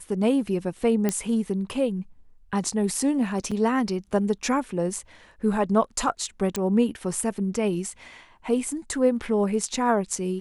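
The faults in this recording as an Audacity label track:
1.090000	1.090000	click −10 dBFS
3.510000	3.520000	drop-out 5.5 ms
6.560000	6.560000	click −12 dBFS

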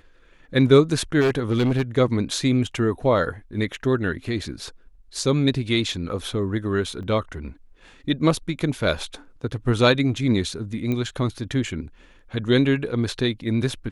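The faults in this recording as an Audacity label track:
1.200000	1.820000	clipping −16 dBFS
7.030000	7.030000	drop-out 2.2 ms
10.920000	10.920000	click −15 dBFS

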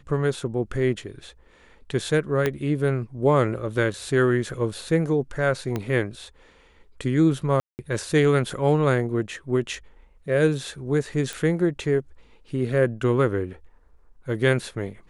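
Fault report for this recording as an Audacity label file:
2.460000	2.460000	click −10 dBFS
5.760000	5.760000	click −14 dBFS
7.600000	7.790000	drop-out 189 ms
11.330000	11.330000	click

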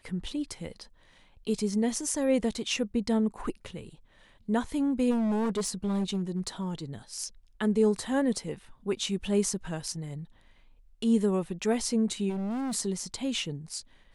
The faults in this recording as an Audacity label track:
5.100000	6.650000	clipping −25 dBFS
12.290000	12.750000	clipping −30 dBFS

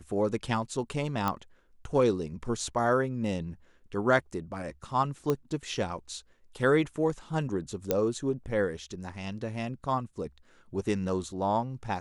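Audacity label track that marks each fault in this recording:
1.280000	1.280000	click −15 dBFS
5.300000	5.300000	click −15 dBFS
7.910000	7.910000	click −12 dBFS

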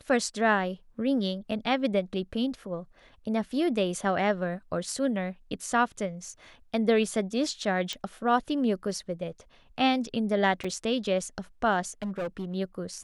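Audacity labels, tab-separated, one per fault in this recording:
7.930000	7.930000	click
10.640000	10.640000	drop-out 4.7 ms
12.020000	12.550000	clipping −28.5 dBFS

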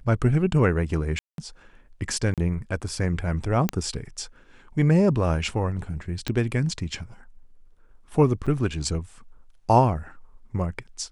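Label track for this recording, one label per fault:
1.190000	1.380000	drop-out 192 ms
2.340000	2.380000	drop-out 37 ms
3.690000	3.690000	click −8 dBFS
6.280000	6.280000	click −13 dBFS
8.460000	8.470000	drop-out 6 ms

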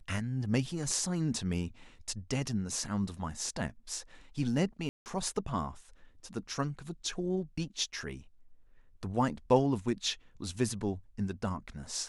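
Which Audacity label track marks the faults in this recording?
4.890000	5.060000	drop-out 169 ms

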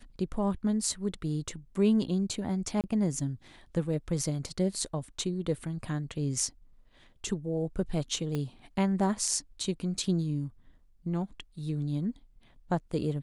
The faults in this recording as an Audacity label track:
2.810000	2.840000	drop-out 28 ms
8.350000	8.350000	click −20 dBFS

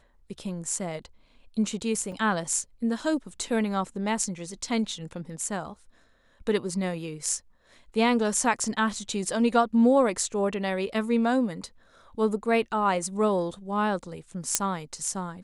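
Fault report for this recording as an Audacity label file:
2.120000	2.120000	drop-out 3.3 ms
14.550000	14.550000	click −4 dBFS

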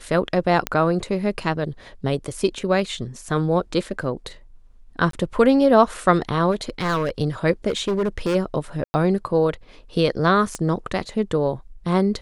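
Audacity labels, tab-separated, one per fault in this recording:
0.670000	0.670000	click −6 dBFS
5.110000	5.130000	drop-out 23 ms
6.510000	7.100000	clipping −18 dBFS
7.680000	8.360000	clipping −18 dBFS
8.840000	8.940000	drop-out 100 ms
10.550000	10.550000	click −14 dBFS

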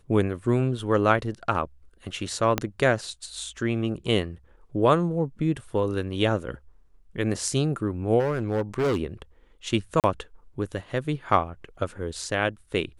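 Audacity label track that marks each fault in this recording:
2.580000	2.580000	click −8 dBFS
8.190000	9.010000	clipping −20.5 dBFS
10.000000	10.040000	drop-out 38 ms

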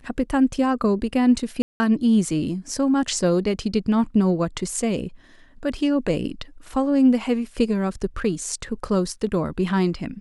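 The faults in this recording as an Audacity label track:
1.620000	1.800000	drop-out 180 ms

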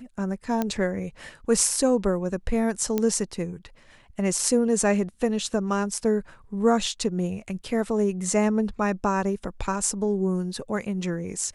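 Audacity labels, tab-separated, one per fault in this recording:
0.620000	0.620000	click −12 dBFS
2.980000	2.980000	click −11 dBFS

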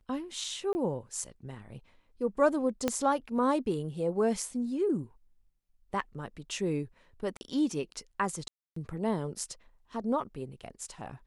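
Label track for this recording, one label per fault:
0.730000	0.750000	drop-out 20 ms
2.880000	2.880000	click −13 dBFS
7.370000	7.410000	drop-out 40 ms
8.480000	8.760000	drop-out 284 ms

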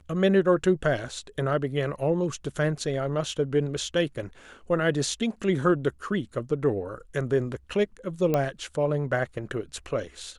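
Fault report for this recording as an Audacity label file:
8.340000	8.340000	click −12 dBFS

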